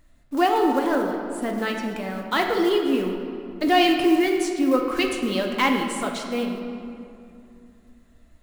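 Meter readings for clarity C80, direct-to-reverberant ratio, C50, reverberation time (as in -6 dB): 5.0 dB, 1.5 dB, 4.0 dB, 2.6 s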